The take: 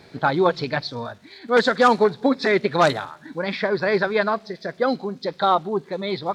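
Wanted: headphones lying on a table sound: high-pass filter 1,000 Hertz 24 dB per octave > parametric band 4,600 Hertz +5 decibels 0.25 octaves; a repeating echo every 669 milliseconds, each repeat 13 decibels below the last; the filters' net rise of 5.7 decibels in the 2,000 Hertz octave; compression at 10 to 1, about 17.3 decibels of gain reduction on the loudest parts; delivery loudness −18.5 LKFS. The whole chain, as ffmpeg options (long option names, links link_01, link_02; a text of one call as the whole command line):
ffmpeg -i in.wav -af "equalizer=frequency=2000:width_type=o:gain=7.5,acompressor=threshold=-28dB:ratio=10,highpass=frequency=1000:width=0.5412,highpass=frequency=1000:width=1.3066,equalizer=frequency=4600:width_type=o:width=0.25:gain=5,aecho=1:1:669|1338|2007:0.224|0.0493|0.0108,volume=17dB" out.wav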